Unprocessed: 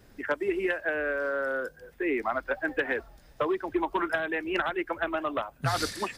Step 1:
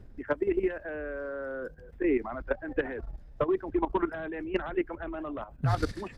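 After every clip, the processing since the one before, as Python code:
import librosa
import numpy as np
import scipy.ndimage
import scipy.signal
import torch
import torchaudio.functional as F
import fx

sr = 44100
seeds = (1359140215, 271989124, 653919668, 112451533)

y = fx.tilt_eq(x, sr, slope=-3.5)
y = fx.level_steps(y, sr, step_db=12)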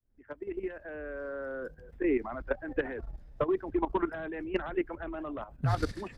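y = fx.fade_in_head(x, sr, length_s=1.33)
y = y * librosa.db_to_amplitude(-1.5)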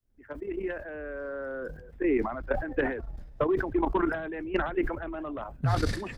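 y = fx.sustainer(x, sr, db_per_s=73.0)
y = y * librosa.db_to_amplitude(2.0)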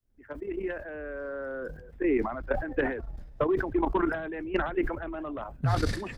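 y = x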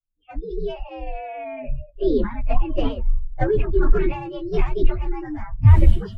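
y = fx.partial_stretch(x, sr, pct=128)
y = fx.noise_reduce_blind(y, sr, reduce_db=29)
y = fx.riaa(y, sr, side='playback')
y = y * librosa.db_to_amplitude(4.0)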